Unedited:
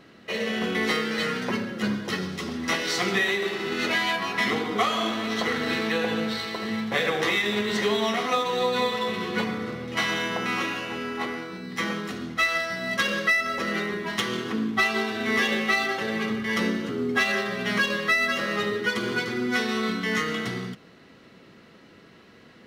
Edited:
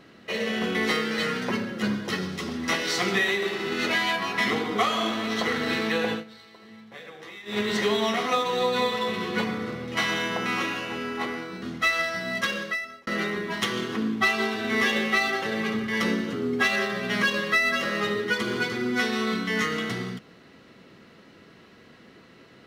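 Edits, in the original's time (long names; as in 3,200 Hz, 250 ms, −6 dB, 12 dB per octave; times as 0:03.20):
0:06.11–0:07.59: duck −18.5 dB, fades 0.13 s
0:11.62–0:12.18: remove
0:12.84–0:13.63: fade out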